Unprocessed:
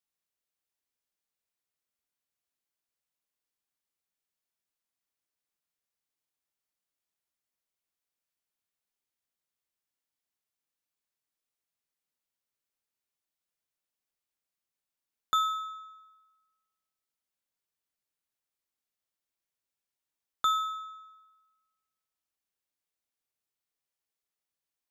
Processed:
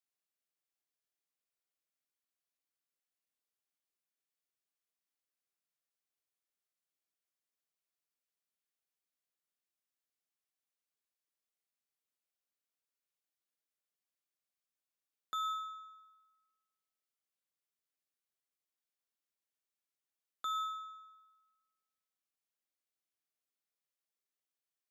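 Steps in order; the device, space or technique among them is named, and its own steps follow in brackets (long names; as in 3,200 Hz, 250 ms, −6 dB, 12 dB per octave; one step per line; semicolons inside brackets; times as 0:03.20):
PA system with an anti-feedback notch (high-pass filter 200 Hz; Butterworth band-reject 910 Hz, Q 7.7; brickwall limiter −25.5 dBFS, peak gain reduction 8 dB)
level −5 dB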